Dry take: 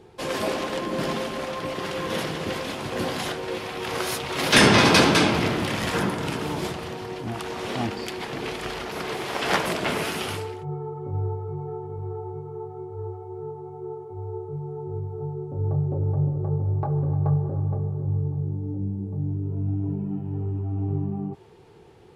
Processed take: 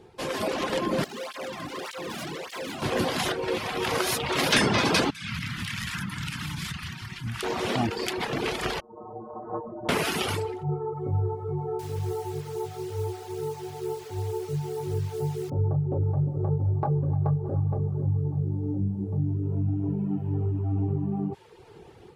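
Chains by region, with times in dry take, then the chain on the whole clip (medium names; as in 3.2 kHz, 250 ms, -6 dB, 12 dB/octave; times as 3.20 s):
1.04–2.82 s: hard clipper -33.5 dBFS + cancelling through-zero flanger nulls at 1.7 Hz, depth 2.4 ms
5.10–7.43 s: Chebyshev band-stop 160–1600 Hz + compression, threshold -31 dBFS
8.80–9.89 s: steep low-pass 1.1 kHz 48 dB/octave + inharmonic resonator 110 Hz, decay 0.38 s, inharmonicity 0.008
11.79–15.50 s: de-hum 187.4 Hz, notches 34 + word length cut 8-bit, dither none
whole clip: compression 3:1, threshold -25 dBFS; reverb removal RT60 0.76 s; level rider gain up to 6 dB; trim -1.5 dB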